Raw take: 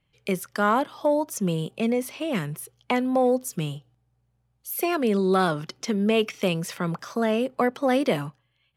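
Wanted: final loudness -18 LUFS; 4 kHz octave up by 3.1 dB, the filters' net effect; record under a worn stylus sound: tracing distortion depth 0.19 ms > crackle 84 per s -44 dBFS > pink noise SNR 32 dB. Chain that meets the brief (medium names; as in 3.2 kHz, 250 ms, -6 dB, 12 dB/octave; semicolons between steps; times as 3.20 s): peaking EQ 4 kHz +4.5 dB; tracing distortion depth 0.19 ms; crackle 84 per s -44 dBFS; pink noise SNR 32 dB; trim +7 dB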